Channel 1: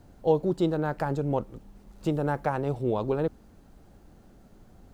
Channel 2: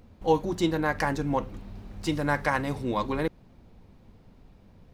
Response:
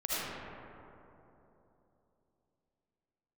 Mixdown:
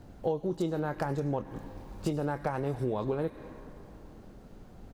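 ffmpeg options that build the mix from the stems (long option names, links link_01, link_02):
-filter_complex "[0:a]highshelf=frequency=6600:gain=-7.5,volume=3dB[link_01];[1:a]highshelf=frequency=5800:gain=11.5,acompressor=threshold=-30dB:ratio=4,adelay=21,volume=-10dB,asplit=2[link_02][link_03];[link_03]volume=-10dB[link_04];[2:a]atrim=start_sample=2205[link_05];[link_04][link_05]afir=irnorm=-1:irlink=0[link_06];[link_01][link_02][link_06]amix=inputs=3:normalize=0,acompressor=threshold=-28dB:ratio=5"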